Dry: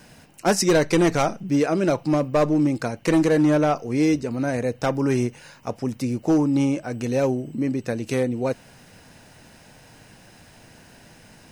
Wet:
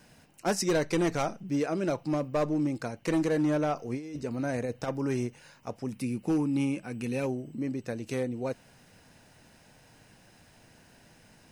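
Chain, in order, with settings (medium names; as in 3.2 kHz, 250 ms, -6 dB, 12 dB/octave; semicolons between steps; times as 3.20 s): 3.77–4.88 s: compressor with a negative ratio -23 dBFS, ratio -0.5; 5.92–7.26 s: graphic EQ with 31 bands 200 Hz +9 dB, 630 Hz -9 dB, 2.5 kHz +8 dB, 6.3 kHz -4 dB, 10 kHz +10 dB; trim -8.5 dB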